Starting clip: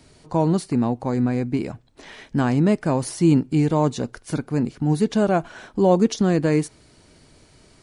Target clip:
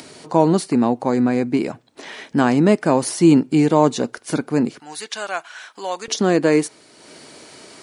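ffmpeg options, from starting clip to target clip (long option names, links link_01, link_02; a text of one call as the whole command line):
ffmpeg -i in.wav -af "asetnsamples=nb_out_samples=441:pad=0,asendcmd='4.8 highpass f 1400;6.08 highpass f 300',highpass=230,acompressor=mode=upward:threshold=-40dB:ratio=2.5,volume=6.5dB" out.wav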